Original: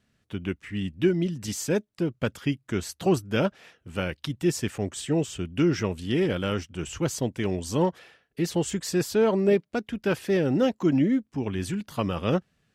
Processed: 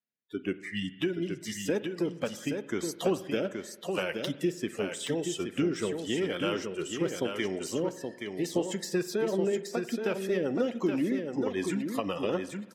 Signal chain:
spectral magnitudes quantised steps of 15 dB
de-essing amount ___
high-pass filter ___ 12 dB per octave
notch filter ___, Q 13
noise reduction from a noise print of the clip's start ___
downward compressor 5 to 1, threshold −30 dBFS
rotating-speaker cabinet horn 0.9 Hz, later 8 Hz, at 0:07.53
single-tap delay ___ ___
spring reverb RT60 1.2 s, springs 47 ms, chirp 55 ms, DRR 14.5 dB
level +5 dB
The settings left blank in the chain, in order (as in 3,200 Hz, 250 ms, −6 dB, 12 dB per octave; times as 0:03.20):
80%, 270 Hz, 4,400 Hz, 26 dB, 824 ms, −6 dB